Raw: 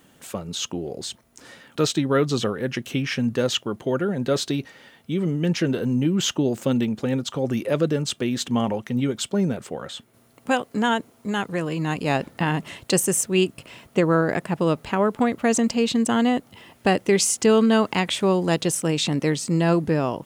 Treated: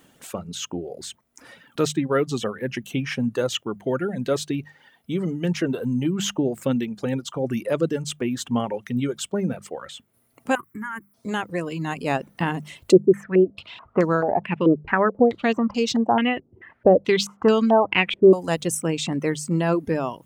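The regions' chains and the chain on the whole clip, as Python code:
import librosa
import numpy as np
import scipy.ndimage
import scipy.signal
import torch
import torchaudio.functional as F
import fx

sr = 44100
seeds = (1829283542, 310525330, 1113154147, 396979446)

y = fx.chain(x, sr, fx.curve_eq(hz=(350.0, 580.0, 1100.0, 2200.0, 3700.0, 12000.0), db=(0, -25, 7, 5, -24, 13)),
    fx.level_steps(step_db=15), at=(10.55, 11.14))
y = fx.chain(y, sr, fx.resample_bad(factor=2, down='none', up='zero_stuff'),
    fx.filter_held_lowpass(hz=4.6, low_hz=370.0, high_hz=5600.0), at=(12.92, 18.33))
y = fx.dereverb_blind(y, sr, rt60_s=1.1)
y = fx.dynamic_eq(y, sr, hz=4400.0, q=1.4, threshold_db=-44.0, ratio=4.0, max_db=-6)
y = fx.hum_notches(y, sr, base_hz=50, count=4)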